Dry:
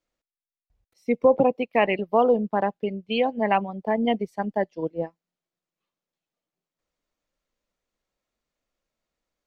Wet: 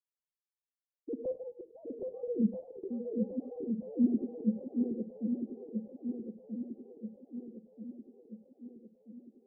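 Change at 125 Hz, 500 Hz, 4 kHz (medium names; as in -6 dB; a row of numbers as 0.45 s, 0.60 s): -8.0 dB, -16.0 dB, under -40 dB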